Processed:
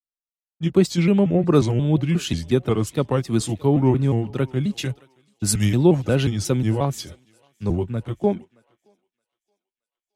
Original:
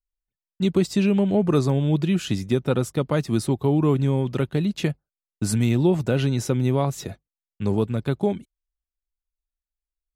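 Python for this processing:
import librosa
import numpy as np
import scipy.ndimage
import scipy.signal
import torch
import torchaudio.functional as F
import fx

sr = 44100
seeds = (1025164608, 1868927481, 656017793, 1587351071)

y = fx.pitch_trill(x, sr, semitones=-2.5, every_ms=179)
y = fx.echo_thinned(y, sr, ms=622, feedback_pct=61, hz=520.0, wet_db=-19)
y = fx.band_widen(y, sr, depth_pct=70)
y = y * 10.0 ** (2.0 / 20.0)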